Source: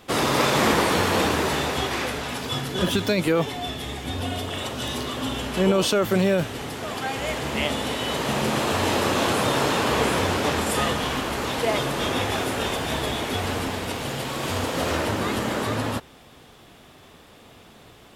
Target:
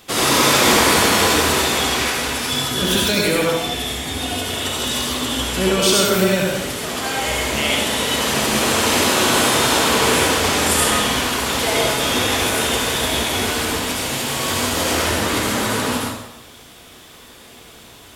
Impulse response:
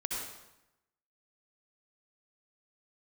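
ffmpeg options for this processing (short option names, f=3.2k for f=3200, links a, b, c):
-filter_complex "[0:a]highshelf=f=2.7k:g=11[a];[1:a]atrim=start_sample=2205[b];[a][b]afir=irnorm=-1:irlink=0"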